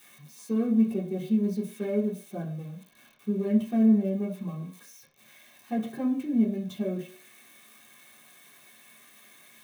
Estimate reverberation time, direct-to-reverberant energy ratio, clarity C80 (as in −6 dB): 0.50 s, −7.0 dB, 13.0 dB